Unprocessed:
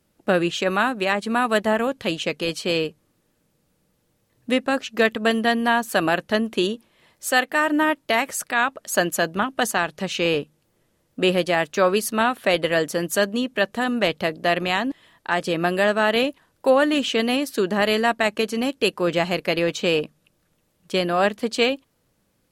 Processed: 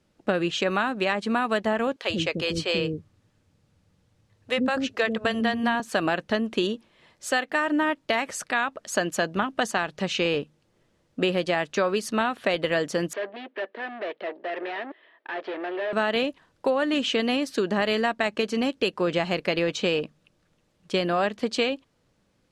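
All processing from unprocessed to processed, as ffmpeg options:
-filter_complex "[0:a]asettb=1/sr,asplit=3[a][b][c];[a]atrim=end=1.964[d];[b]atrim=start=1.96:end=5.8,asetpts=PTS-STARTPTS,afade=t=in:d=0.004:c=qsin,afade=t=out:st=3.836:d=0.004:c=qsin,equalizer=f=94:t=o:w=0.62:g=14,acrossover=split=390[e][f];[e]adelay=90[g];[g][f]amix=inputs=2:normalize=0,atrim=end_sample=169344[h];[c]atrim=start=5.796[i];[d][h]acrossfade=d=0.004:c1=hsin:c2=qsin[j];[j][i]acrossfade=d=0.004:c1=qsin:c2=hsin,asettb=1/sr,asplit=3[k][l][m];[k]atrim=end=13.134[n];[l]atrim=start=13.13:end=15.93,asetpts=PTS-STARTPTS,afade=t=in:d=0.004:c=qsin,afade=t=out:st=2.796:d=0.004:c=qsin,aeval=exprs='(tanh(39.8*val(0)+0.8)-tanh(0.8))/39.8':c=same,highpass=f=320:w=0.5412,highpass=f=320:w=1.3066,equalizer=f=380:t=q:w=4:g=7,equalizer=f=630:t=q:w=4:g=6,equalizer=f=1.8k:t=q:w=4:g=6,lowpass=f=3.3k:w=0.5412,lowpass=f=3.3k:w=1.3066[o];[m]atrim=start=15.926[p];[n][o]acrossfade=d=0.004:c1=hsin:c2=qsin[q];[q][p]acrossfade=d=0.004:c1=qsin:c2=hsin,acompressor=threshold=-20dB:ratio=6,lowpass=6.5k"

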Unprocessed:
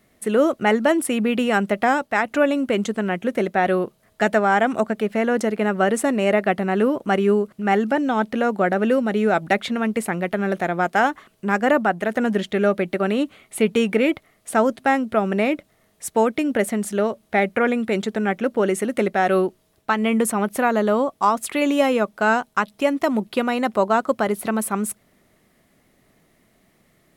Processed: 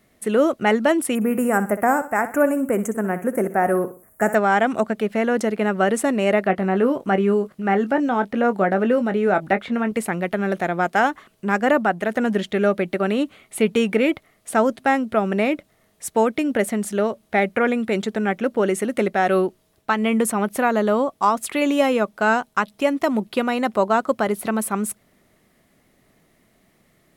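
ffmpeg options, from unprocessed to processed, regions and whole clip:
-filter_complex "[0:a]asettb=1/sr,asplit=3[a][b][c];[a]atrim=end=1.154[d];[b]atrim=start=1.15:end=4.35,asetpts=PTS-STARTPTS,afade=t=in:d=0.004:c=qsin,afade=t=out:st=3.196:d=0.004:c=qsin,asuperstop=centerf=3900:order=4:qfactor=0.53,aemphasis=mode=production:type=75kf,aecho=1:1:62|124|186:0.224|0.0761|0.0259,atrim=end_sample=141120[e];[c]atrim=start=4.346[f];[d][e]acrossfade=d=0.004:c1=hsin:c2=qsin[g];[g][f]acrossfade=d=0.004:c1=qsin:c2=hsin,asettb=1/sr,asplit=3[h][i][j];[h]atrim=end=6.474[k];[i]atrim=start=6.47:end=9.92,asetpts=PTS-STARTPTS,afade=t=in:d=0.004:c=qsin,afade=t=out:st=3.446:d=0.004:c=qsin,acrossover=split=2500[l][m];[m]acompressor=threshold=-46dB:ratio=4:attack=1:release=60[n];[l][n]amix=inputs=2:normalize=0,asplit=2[o][p];[p]adelay=21,volume=-10.5dB[q];[o][q]amix=inputs=2:normalize=0,atrim=end_sample=152145[r];[j]atrim=start=9.916[s];[k][r]acrossfade=d=0.004:c1=hsin:c2=qsin[t];[t][s]acrossfade=d=0.004:c1=qsin:c2=hsin"

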